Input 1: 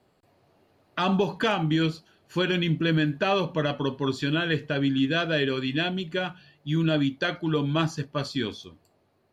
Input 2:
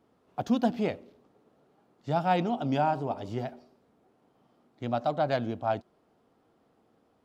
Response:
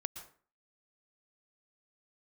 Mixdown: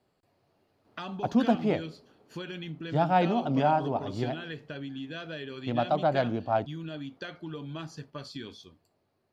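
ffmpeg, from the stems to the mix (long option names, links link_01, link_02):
-filter_complex "[0:a]acompressor=threshold=-29dB:ratio=4,equalizer=frequency=4900:width_type=o:width=0.4:gain=3,volume=-7.5dB[link_01];[1:a]lowpass=frequency=3600:poles=1,adelay=850,volume=2dB[link_02];[link_01][link_02]amix=inputs=2:normalize=0"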